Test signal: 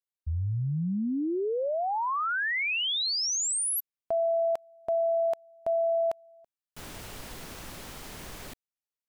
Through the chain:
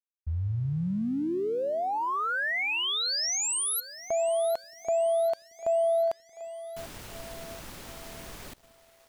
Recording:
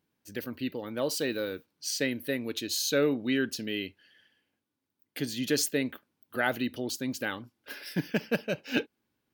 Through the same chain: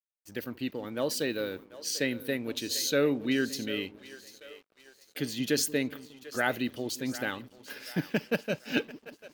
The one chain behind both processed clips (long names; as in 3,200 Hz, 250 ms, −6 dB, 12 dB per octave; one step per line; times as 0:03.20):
echo with a time of its own for lows and highs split 390 Hz, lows 178 ms, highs 742 ms, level −15 dB
dead-zone distortion −57 dBFS